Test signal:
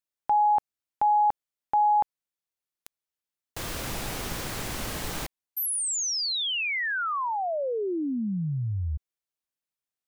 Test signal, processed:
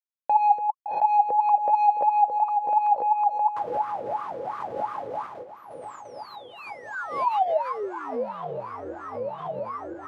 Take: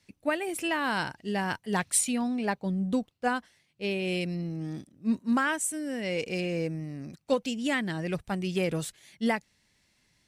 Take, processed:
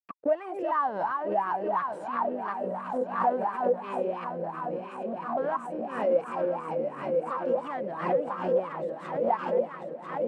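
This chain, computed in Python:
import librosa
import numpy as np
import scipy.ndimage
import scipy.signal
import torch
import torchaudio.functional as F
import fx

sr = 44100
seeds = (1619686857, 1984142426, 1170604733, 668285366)

y = fx.reverse_delay_fb(x, sr, ms=497, feedback_pct=76, wet_db=-6.0)
y = fx.recorder_agc(y, sr, target_db=-21.0, rise_db_per_s=7.8, max_gain_db=30)
y = scipy.signal.sosfilt(scipy.signal.butter(4, 90.0, 'highpass', fs=sr, output='sos'), y)
y = fx.low_shelf(y, sr, hz=270.0, db=8.0)
y = np.sign(y) * np.maximum(np.abs(y) - 10.0 ** (-51.5 / 20.0), 0.0)
y = fx.leveller(y, sr, passes=3)
y = fx.high_shelf(y, sr, hz=3300.0, db=-6.0)
y = fx.gate_hold(y, sr, open_db=-17.0, close_db=-20.0, hold_ms=62.0, range_db=-9, attack_ms=1.5, release_ms=41.0)
y = fx.echo_diffused(y, sr, ms=762, feedback_pct=71, wet_db=-16.0)
y = fx.wah_lfo(y, sr, hz=2.9, low_hz=490.0, high_hz=1200.0, q=11.0)
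y = fx.pre_swell(y, sr, db_per_s=86.0)
y = y * 10.0 ** (4.0 / 20.0)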